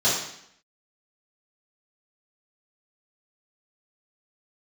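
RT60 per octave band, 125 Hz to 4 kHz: 0.70 s, 0.75 s, 0.70 s, 0.70 s, 0.75 s, 0.70 s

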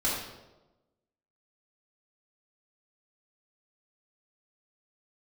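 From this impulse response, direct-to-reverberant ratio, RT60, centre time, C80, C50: -6.5 dB, 1.1 s, 61 ms, 4.0 dB, 1.0 dB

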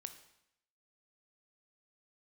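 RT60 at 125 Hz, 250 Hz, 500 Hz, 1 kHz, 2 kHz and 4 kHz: 0.80 s, 0.80 s, 0.75 s, 0.80 s, 0.80 s, 0.75 s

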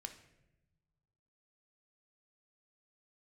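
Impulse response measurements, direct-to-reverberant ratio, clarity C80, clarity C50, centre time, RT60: 5.5 dB, 13.5 dB, 10.0 dB, 13 ms, 0.95 s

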